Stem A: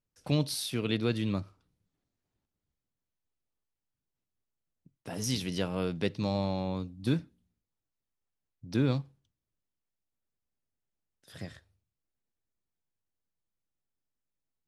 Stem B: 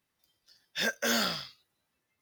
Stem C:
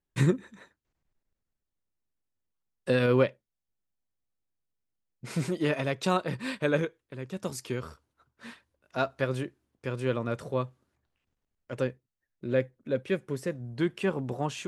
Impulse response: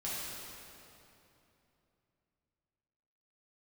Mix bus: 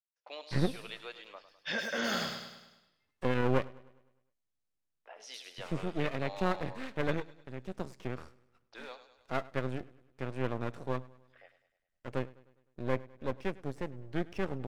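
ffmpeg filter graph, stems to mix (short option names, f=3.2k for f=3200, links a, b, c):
-filter_complex "[0:a]highpass=f=580:w=0.5412,highpass=f=580:w=1.3066,afwtdn=0.00282,volume=-6.5dB,asplit=2[a][b];[b]volume=-13dB[c];[1:a]highshelf=f=8k:g=-9,adelay=900,volume=-0.5dB,asplit=2[d][e];[e]volume=-8dB[f];[2:a]lowpass=10k,acrossover=split=2900[g][h];[h]acompressor=threshold=-56dB:ratio=4:attack=1:release=60[i];[g][i]amix=inputs=2:normalize=0,aeval=exprs='max(val(0),0)':c=same,adelay=350,volume=-2.5dB,asplit=2[j][k];[k]volume=-21.5dB[l];[a][d]amix=inputs=2:normalize=0,lowpass=3.7k,alimiter=level_in=0.5dB:limit=-24dB:level=0:latency=1,volume=-0.5dB,volume=0dB[m];[c][f][l]amix=inputs=3:normalize=0,aecho=0:1:102|204|306|408|510|612|714:1|0.51|0.26|0.133|0.0677|0.0345|0.0176[n];[j][m][n]amix=inputs=3:normalize=0"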